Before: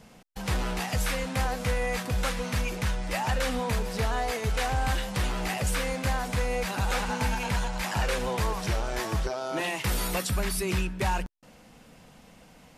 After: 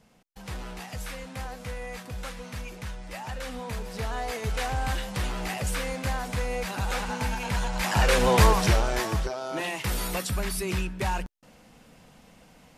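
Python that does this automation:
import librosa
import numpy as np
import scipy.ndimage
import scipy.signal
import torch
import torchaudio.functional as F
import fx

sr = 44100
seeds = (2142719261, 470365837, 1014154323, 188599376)

y = fx.gain(x, sr, db=fx.line((3.35, -8.5), (4.45, -1.5), (7.43, -1.5), (8.43, 10.5), (9.33, -1.0)))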